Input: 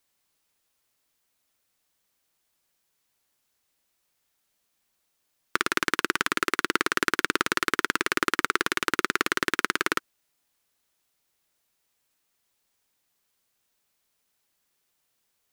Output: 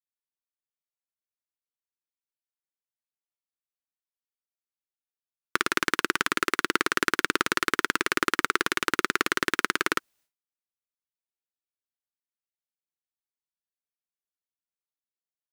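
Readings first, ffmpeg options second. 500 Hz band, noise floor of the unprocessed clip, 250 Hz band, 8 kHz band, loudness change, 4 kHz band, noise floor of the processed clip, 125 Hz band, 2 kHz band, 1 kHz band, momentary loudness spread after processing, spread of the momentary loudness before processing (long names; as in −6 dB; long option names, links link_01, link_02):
0.0 dB, −76 dBFS, 0.0 dB, 0.0 dB, 0.0 dB, 0.0 dB, below −85 dBFS, 0.0 dB, 0.0 dB, 0.0 dB, 2 LU, 2 LU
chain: -af "agate=range=-33dB:threshold=-57dB:ratio=3:detection=peak"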